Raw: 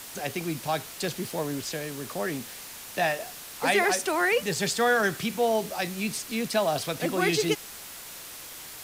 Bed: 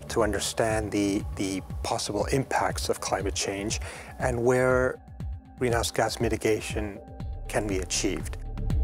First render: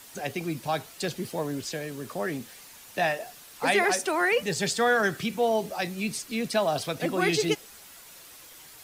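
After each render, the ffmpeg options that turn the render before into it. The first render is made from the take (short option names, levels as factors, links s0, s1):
-af "afftdn=nr=8:nf=-42"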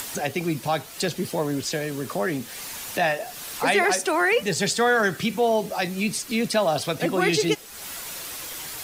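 -filter_complex "[0:a]asplit=2[s0][s1];[s1]alimiter=limit=0.0708:level=0:latency=1:release=307,volume=1.12[s2];[s0][s2]amix=inputs=2:normalize=0,acompressor=mode=upward:threshold=0.0501:ratio=2.5"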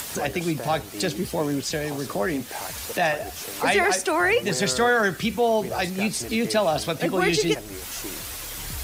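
-filter_complex "[1:a]volume=0.316[s0];[0:a][s0]amix=inputs=2:normalize=0"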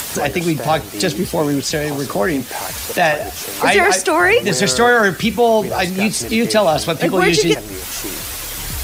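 -af "volume=2.51,alimiter=limit=0.794:level=0:latency=1"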